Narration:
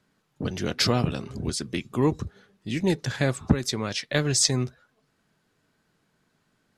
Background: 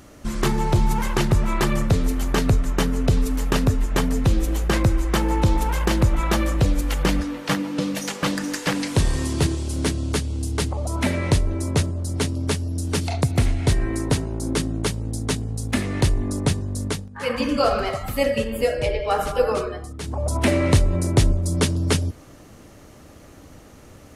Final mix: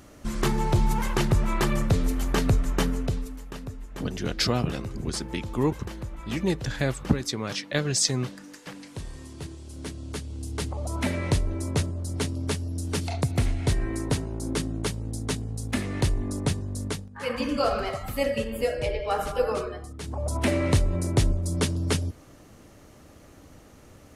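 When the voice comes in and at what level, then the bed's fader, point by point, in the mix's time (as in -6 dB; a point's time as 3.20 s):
3.60 s, -2.0 dB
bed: 2.89 s -3.5 dB
3.45 s -18 dB
9.38 s -18 dB
10.85 s -5 dB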